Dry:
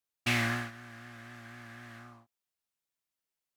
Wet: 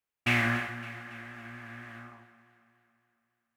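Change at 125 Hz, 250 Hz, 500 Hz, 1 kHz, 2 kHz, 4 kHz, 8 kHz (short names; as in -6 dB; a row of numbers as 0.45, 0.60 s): +2.5, +3.0, +3.0, +3.5, +4.0, -0.5, -4.5 dB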